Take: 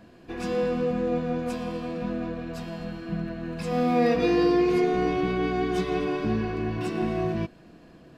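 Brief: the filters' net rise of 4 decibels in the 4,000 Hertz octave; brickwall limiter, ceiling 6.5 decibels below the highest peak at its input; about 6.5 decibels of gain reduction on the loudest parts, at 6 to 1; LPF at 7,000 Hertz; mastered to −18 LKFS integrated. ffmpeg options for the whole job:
ffmpeg -i in.wav -af "lowpass=7000,equalizer=frequency=4000:width_type=o:gain=5.5,acompressor=threshold=-25dB:ratio=6,volume=15dB,alimiter=limit=-9dB:level=0:latency=1" out.wav

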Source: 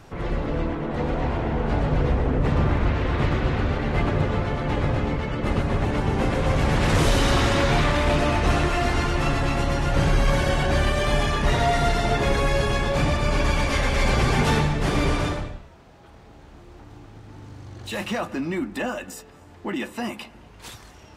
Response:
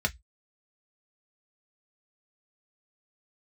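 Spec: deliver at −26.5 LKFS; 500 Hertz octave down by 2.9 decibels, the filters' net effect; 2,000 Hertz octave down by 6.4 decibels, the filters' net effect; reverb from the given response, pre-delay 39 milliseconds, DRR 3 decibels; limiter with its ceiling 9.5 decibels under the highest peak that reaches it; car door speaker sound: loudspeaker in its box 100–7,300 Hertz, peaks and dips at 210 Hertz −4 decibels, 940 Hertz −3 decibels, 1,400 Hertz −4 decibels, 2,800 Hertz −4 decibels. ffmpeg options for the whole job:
-filter_complex "[0:a]equalizer=frequency=500:width_type=o:gain=-3,equalizer=frequency=2000:width_type=o:gain=-5.5,alimiter=limit=-20.5dB:level=0:latency=1,asplit=2[link_01][link_02];[1:a]atrim=start_sample=2205,adelay=39[link_03];[link_02][link_03]afir=irnorm=-1:irlink=0,volume=-11.5dB[link_04];[link_01][link_04]amix=inputs=2:normalize=0,highpass=100,equalizer=frequency=210:width_type=q:width=4:gain=-4,equalizer=frequency=940:width_type=q:width=4:gain=-3,equalizer=frequency=1400:width_type=q:width=4:gain=-4,equalizer=frequency=2800:width_type=q:width=4:gain=-4,lowpass=frequency=7300:width=0.5412,lowpass=frequency=7300:width=1.3066,volume=3.5dB"

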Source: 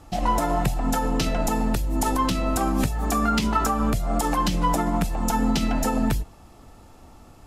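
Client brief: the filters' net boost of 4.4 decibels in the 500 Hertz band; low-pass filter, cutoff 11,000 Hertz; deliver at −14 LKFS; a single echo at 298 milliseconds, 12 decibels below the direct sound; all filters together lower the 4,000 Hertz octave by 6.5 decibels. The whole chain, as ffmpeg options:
ffmpeg -i in.wav -af "lowpass=11000,equalizer=frequency=500:width_type=o:gain=6,equalizer=frequency=4000:width_type=o:gain=-9,aecho=1:1:298:0.251,volume=8.5dB" out.wav

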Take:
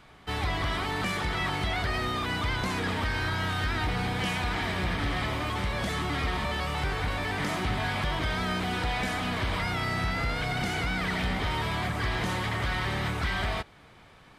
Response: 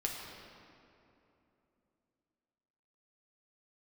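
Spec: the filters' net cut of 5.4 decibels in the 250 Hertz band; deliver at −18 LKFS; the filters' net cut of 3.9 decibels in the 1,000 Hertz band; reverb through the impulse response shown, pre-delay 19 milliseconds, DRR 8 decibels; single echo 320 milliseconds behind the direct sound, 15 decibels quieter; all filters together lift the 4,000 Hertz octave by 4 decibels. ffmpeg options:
-filter_complex "[0:a]equalizer=frequency=250:width_type=o:gain=-8,equalizer=frequency=1000:width_type=o:gain=-5,equalizer=frequency=4000:width_type=o:gain=5.5,aecho=1:1:320:0.178,asplit=2[link_01][link_02];[1:a]atrim=start_sample=2205,adelay=19[link_03];[link_02][link_03]afir=irnorm=-1:irlink=0,volume=-11dB[link_04];[link_01][link_04]amix=inputs=2:normalize=0,volume=11dB"

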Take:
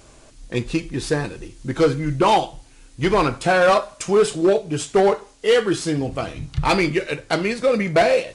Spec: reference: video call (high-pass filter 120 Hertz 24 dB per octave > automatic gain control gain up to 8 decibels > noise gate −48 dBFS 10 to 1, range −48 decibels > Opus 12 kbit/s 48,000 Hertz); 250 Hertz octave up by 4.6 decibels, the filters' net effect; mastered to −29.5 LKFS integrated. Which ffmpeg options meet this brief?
ffmpeg -i in.wav -af "highpass=frequency=120:width=0.5412,highpass=frequency=120:width=1.3066,equalizer=frequency=250:width_type=o:gain=7,dynaudnorm=maxgain=8dB,agate=range=-48dB:threshold=-48dB:ratio=10,volume=-10.5dB" -ar 48000 -c:a libopus -b:a 12k out.opus

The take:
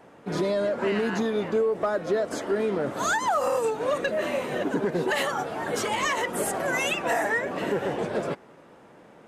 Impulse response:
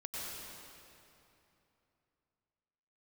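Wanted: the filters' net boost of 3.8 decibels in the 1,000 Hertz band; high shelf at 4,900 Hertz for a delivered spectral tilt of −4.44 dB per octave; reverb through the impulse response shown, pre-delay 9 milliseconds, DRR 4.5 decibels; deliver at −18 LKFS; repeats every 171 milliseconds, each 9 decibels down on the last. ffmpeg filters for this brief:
-filter_complex "[0:a]equalizer=frequency=1000:width_type=o:gain=5,highshelf=frequency=4900:gain=-5,aecho=1:1:171|342|513|684:0.355|0.124|0.0435|0.0152,asplit=2[link_01][link_02];[1:a]atrim=start_sample=2205,adelay=9[link_03];[link_02][link_03]afir=irnorm=-1:irlink=0,volume=-6dB[link_04];[link_01][link_04]amix=inputs=2:normalize=0,volume=5.5dB"

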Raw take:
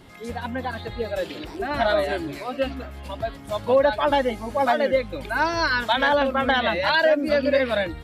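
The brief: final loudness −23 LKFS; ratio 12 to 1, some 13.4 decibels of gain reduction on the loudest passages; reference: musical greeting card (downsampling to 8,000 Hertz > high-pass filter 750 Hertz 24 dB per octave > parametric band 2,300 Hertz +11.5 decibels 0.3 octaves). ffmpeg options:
ffmpeg -i in.wav -af "acompressor=threshold=-28dB:ratio=12,aresample=8000,aresample=44100,highpass=frequency=750:width=0.5412,highpass=frequency=750:width=1.3066,equalizer=frequency=2300:width_type=o:width=0.3:gain=11.5,volume=11.5dB" out.wav

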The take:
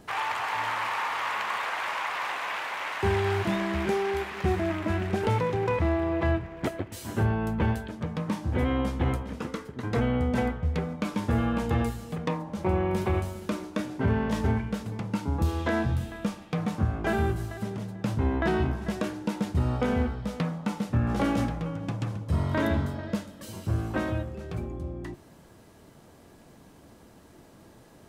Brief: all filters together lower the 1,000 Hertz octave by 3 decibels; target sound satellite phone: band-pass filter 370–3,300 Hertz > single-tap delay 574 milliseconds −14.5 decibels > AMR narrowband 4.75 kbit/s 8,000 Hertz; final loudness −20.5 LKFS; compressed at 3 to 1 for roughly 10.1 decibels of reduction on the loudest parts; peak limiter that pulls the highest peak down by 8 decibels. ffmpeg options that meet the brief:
ffmpeg -i in.wav -af "equalizer=frequency=1000:width_type=o:gain=-3.5,acompressor=threshold=-35dB:ratio=3,alimiter=level_in=4.5dB:limit=-24dB:level=0:latency=1,volume=-4.5dB,highpass=370,lowpass=3300,aecho=1:1:574:0.188,volume=25.5dB" -ar 8000 -c:a libopencore_amrnb -b:a 4750 out.amr

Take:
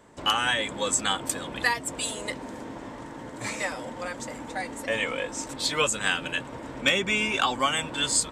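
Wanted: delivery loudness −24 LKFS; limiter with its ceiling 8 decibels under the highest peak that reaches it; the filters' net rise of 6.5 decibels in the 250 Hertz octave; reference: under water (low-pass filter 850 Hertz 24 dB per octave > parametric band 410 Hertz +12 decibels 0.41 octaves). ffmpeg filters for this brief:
ffmpeg -i in.wav -af "equalizer=frequency=250:width_type=o:gain=5.5,alimiter=limit=-17dB:level=0:latency=1,lowpass=frequency=850:width=0.5412,lowpass=frequency=850:width=1.3066,equalizer=frequency=410:width_type=o:width=0.41:gain=12,volume=6.5dB" out.wav

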